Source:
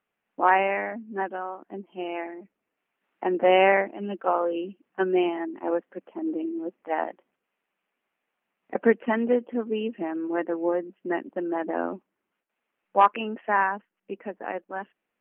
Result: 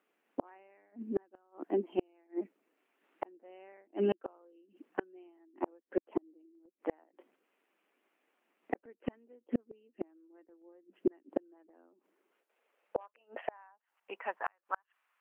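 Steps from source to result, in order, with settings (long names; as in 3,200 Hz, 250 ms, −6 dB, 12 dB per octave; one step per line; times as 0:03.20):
high-pass filter sweep 310 Hz → 1,100 Hz, 0:11.82–0:14.52
gate with flip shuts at −20 dBFS, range −41 dB
level +2 dB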